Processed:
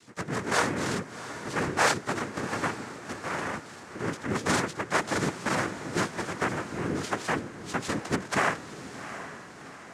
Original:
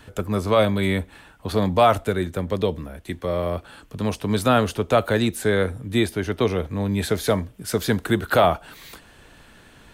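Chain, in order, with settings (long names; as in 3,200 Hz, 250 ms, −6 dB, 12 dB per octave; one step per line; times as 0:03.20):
pitch glide at a constant tempo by +11 semitones ending unshifted
cochlear-implant simulation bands 3
feedback delay with all-pass diffusion 734 ms, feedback 52%, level −12 dB
level −7 dB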